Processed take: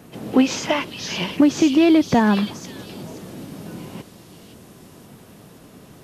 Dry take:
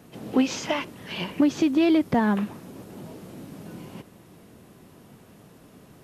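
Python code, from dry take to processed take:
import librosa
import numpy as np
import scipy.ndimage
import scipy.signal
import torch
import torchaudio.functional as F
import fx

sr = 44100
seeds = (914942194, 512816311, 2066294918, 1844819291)

y = fx.echo_stepped(x, sr, ms=523, hz=4300.0, octaves=0.7, feedback_pct=70, wet_db=-1.0)
y = y * 10.0 ** (5.5 / 20.0)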